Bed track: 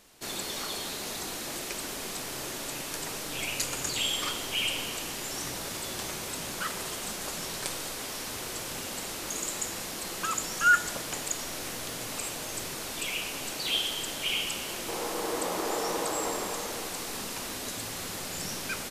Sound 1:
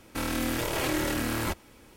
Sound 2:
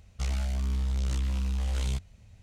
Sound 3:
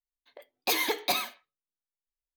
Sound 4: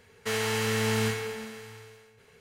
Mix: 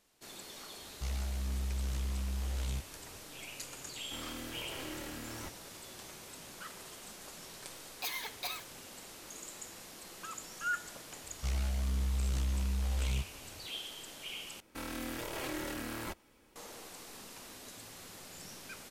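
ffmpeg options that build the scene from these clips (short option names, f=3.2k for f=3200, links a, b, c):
-filter_complex "[2:a]asplit=2[a][b];[1:a]asplit=2[c][d];[0:a]volume=-13.5dB[e];[3:a]highpass=840[f];[d]equalizer=f=88:t=o:w=2:g=-5[g];[e]asplit=2[h][i];[h]atrim=end=14.604[j];[g]atrim=end=1.96,asetpts=PTS-STARTPTS,volume=-10dB[k];[i]atrim=start=16.556[l];[a]atrim=end=2.42,asetpts=PTS-STARTPTS,volume=-7dB,afade=t=in:d=0.004:c=hsin,afade=t=out:st=2.416:d=0.004:c=hsin,adelay=820[m];[c]atrim=end=1.96,asetpts=PTS-STARTPTS,volume=-15.5dB,afade=t=in:d=0.004:c=hsin,afade=t=out:st=1.956:d=0.004:c=hsin,adelay=3960[n];[f]atrim=end=2.36,asetpts=PTS-STARTPTS,volume=-10.5dB,afade=t=in:d=0.004:c=hsin,afade=t=out:st=2.356:d=0.004:c=hsin,adelay=7350[o];[b]atrim=end=2.42,asetpts=PTS-STARTPTS,volume=-4dB,afade=t=in:d=0.004:c=hsin,afade=t=out:st=2.416:d=0.004:c=hsin,adelay=11240[p];[j][k]acrossfade=d=0.004:c1=hsin:c2=hsin[q];[q][l]acrossfade=d=0.004:c1=hsin:c2=hsin[r];[r][m][n][o][p]amix=inputs=5:normalize=0"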